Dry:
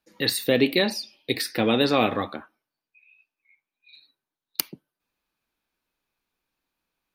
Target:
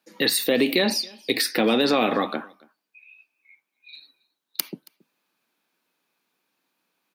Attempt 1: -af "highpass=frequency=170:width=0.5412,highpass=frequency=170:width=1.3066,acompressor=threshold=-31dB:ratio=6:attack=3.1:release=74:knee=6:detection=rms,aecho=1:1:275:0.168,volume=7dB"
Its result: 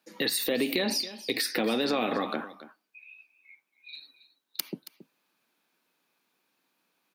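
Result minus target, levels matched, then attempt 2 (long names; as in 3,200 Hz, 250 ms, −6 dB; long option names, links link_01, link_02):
downward compressor: peak gain reduction +7.5 dB; echo-to-direct +10 dB
-af "highpass=frequency=170:width=0.5412,highpass=frequency=170:width=1.3066,acompressor=threshold=-22dB:ratio=6:attack=3.1:release=74:knee=6:detection=rms,aecho=1:1:275:0.0531,volume=7dB"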